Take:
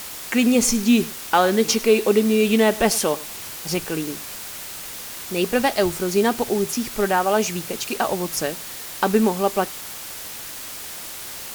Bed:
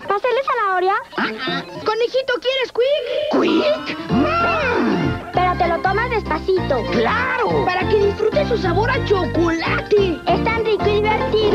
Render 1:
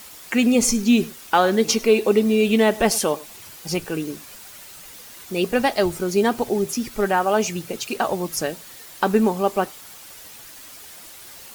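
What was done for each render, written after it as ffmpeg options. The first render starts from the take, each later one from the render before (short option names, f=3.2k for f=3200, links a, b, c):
-af "afftdn=nr=9:nf=-35"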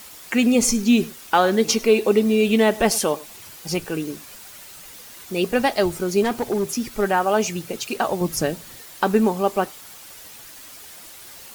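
-filter_complex "[0:a]asettb=1/sr,asplit=3[a][b][c];[a]atrim=end=6.224[d];[b]atrim=start=6.22:end=6.92,asetpts=PTS-STARTPTS,afade=t=in:d=0.004:c=qsin,afade=t=out:st=0.696:d=0.004:c=qsin,asoftclip=type=hard:threshold=-17dB[e];[c]atrim=start=6.916[f];[d][e]acrossfade=d=0.004:c1=hsin:c2=qsin[g];[g][f]acrossfade=d=0.004:c1=qsin:c2=hsin,asettb=1/sr,asplit=3[h][i][j];[h]atrim=end=8.214[k];[i]atrim=start=8.21:end=8.81,asetpts=PTS-STARTPTS,afade=t=in:d=0.004:c=qsin,afade=t=out:st=0.596:d=0.004:c=qsin,lowshelf=f=300:g=9.5[l];[j]atrim=start=8.806[m];[k][l]acrossfade=d=0.004:c1=hsin:c2=qsin[n];[n][m]acrossfade=d=0.004:c1=qsin:c2=hsin"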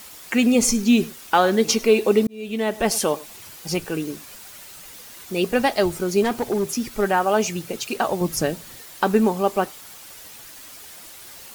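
-filter_complex "[0:a]asplit=2[a][b];[a]atrim=end=2.27,asetpts=PTS-STARTPTS,afade=t=out:st=2.266:d=0.004:c=hsin[c];[b]atrim=start=2.27,asetpts=PTS-STARTPTS,afade=t=in:d=0.78[d];[c][d]concat=n=2:v=0:a=1"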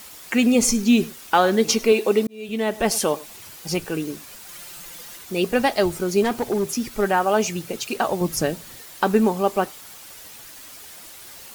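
-filter_complex "[0:a]asettb=1/sr,asplit=3[a][b][c];[a]atrim=end=1.924[d];[b]atrim=start=1.92:end=2.49,asetpts=PTS-STARTPTS,afade=t=in:d=0.004:c=qsin,afade=t=out:st=0.566:d=0.004:c=qsin,lowshelf=f=140:g=-12[e];[c]atrim=start=2.486[f];[d][e]acrossfade=d=0.004:c1=hsin:c2=qsin[g];[g][f]acrossfade=d=0.004:c1=qsin:c2=hsin,asettb=1/sr,asplit=3[h][i][j];[h]atrim=end=4.484[k];[i]atrim=start=4.48:end=5.17,asetpts=PTS-STARTPTS,afade=t=in:d=0.004:c=qsin,afade=t=out:st=0.686:d=0.004:c=qsin,aecho=1:1:5.8:0.88,atrim=end_sample=30429[l];[j]atrim=start=5.166[m];[k][l]acrossfade=d=0.004:c1=hsin:c2=qsin[n];[n][m]acrossfade=d=0.004:c1=qsin:c2=hsin"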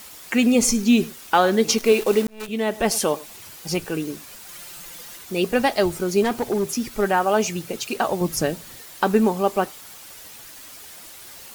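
-filter_complex "[0:a]asettb=1/sr,asplit=3[a][b][c];[a]atrim=end=1.784[d];[b]atrim=start=1.78:end=2.48,asetpts=PTS-STARTPTS,afade=t=in:d=0.004:c=qsin,afade=t=out:st=0.696:d=0.004:c=qsin,acrusher=bits=6:dc=4:mix=0:aa=0.000001[e];[c]atrim=start=2.476[f];[d][e]acrossfade=d=0.004:c1=hsin:c2=qsin[g];[g][f]acrossfade=d=0.004:c1=qsin:c2=hsin"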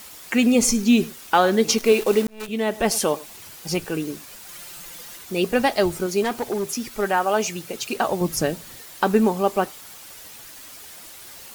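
-filter_complex "[0:a]asettb=1/sr,asplit=3[a][b][c];[a]atrim=end=2.954[d];[b]atrim=start=2.95:end=4.43,asetpts=PTS-STARTPTS,afade=t=in:d=0.004:c=qsin,afade=t=out:st=1.476:d=0.004:c=qsin,aeval=exprs='val(0)*gte(abs(val(0)),0.00501)':c=same[e];[c]atrim=start=4.426[f];[d][e]acrossfade=d=0.004:c1=hsin:c2=qsin[g];[g][f]acrossfade=d=0.004:c1=qsin:c2=hsin,asettb=1/sr,asplit=3[h][i][j];[h]atrim=end=6.064[k];[i]atrim=start=6.06:end=7.8,asetpts=PTS-STARTPTS,afade=t=in:d=0.004:c=qsin,afade=t=out:st=1.736:d=0.004:c=qsin,lowshelf=f=340:g=-6[l];[j]atrim=start=7.796[m];[k][l]acrossfade=d=0.004:c1=hsin:c2=qsin[n];[n][m]acrossfade=d=0.004:c1=qsin:c2=hsin"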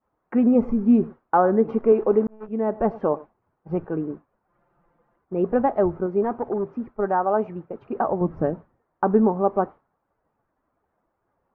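-af "agate=range=-33dB:threshold=-28dB:ratio=3:detection=peak,lowpass=f=1.2k:w=0.5412,lowpass=f=1.2k:w=1.3066"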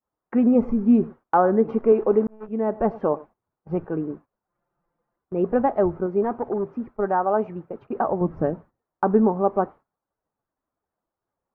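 -af "agate=range=-12dB:threshold=-44dB:ratio=16:detection=peak"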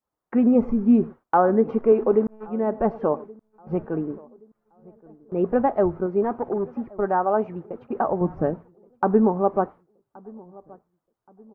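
-filter_complex "[0:a]asplit=2[a][b];[b]adelay=1124,lowpass=f=1.2k:p=1,volume=-23dB,asplit=2[c][d];[d]adelay=1124,lowpass=f=1.2k:p=1,volume=0.4,asplit=2[e][f];[f]adelay=1124,lowpass=f=1.2k:p=1,volume=0.4[g];[a][c][e][g]amix=inputs=4:normalize=0"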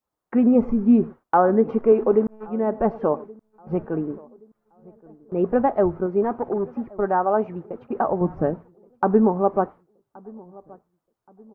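-af "volume=1dB"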